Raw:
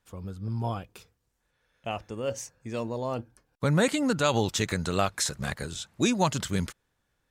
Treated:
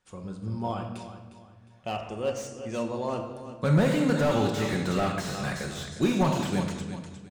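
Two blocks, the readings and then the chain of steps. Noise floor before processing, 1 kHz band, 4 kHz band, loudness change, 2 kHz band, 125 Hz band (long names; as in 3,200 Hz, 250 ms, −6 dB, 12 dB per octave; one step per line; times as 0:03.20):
−77 dBFS, 0.0 dB, −4.0 dB, +0.5 dB, −1.0 dB, +2.0 dB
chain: low-shelf EQ 68 Hz −7 dB
repeating echo 357 ms, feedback 32%, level −13 dB
rectangular room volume 680 cubic metres, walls mixed, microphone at 1 metre
downsampling to 22,050 Hz
slew-rate limiting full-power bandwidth 61 Hz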